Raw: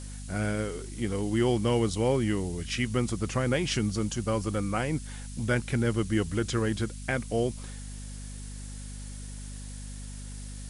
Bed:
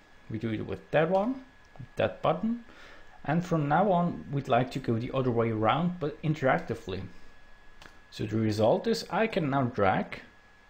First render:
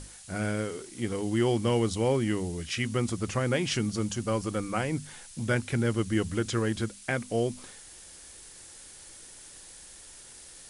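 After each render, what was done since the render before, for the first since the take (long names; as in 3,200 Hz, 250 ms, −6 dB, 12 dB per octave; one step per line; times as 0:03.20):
mains-hum notches 50/100/150/200/250 Hz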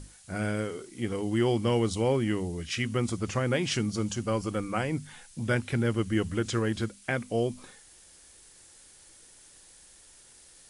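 noise reduction from a noise print 6 dB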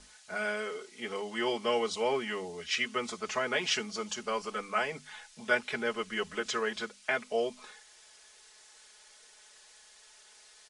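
three-way crossover with the lows and the highs turned down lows −20 dB, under 460 Hz, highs −19 dB, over 7,100 Hz
comb filter 4.7 ms, depth 96%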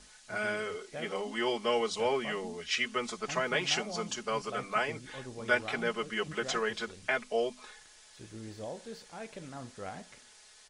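mix in bed −17 dB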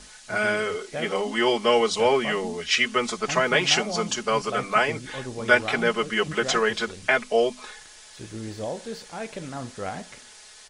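level +9.5 dB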